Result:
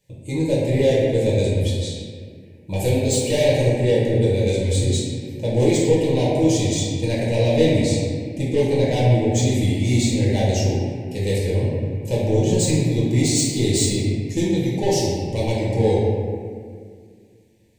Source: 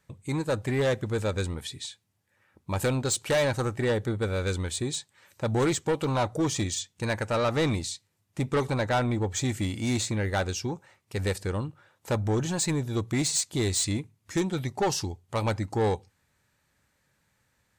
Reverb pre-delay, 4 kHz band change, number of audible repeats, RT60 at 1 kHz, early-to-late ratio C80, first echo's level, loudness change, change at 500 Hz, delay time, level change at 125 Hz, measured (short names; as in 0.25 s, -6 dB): 4 ms, +6.0 dB, none, 1.8 s, 0.5 dB, none, +8.5 dB, +9.5 dB, none, +10.0 dB